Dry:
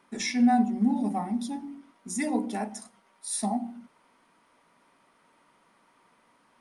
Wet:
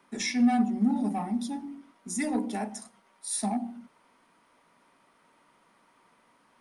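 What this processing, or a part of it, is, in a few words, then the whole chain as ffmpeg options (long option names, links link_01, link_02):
one-band saturation: -filter_complex "[0:a]acrossover=split=270|2100[link_01][link_02][link_03];[link_02]asoftclip=type=tanh:threshold=-26dB[link_04];[link_01][link_04][link_03]amix=inputs=3:normalize=0"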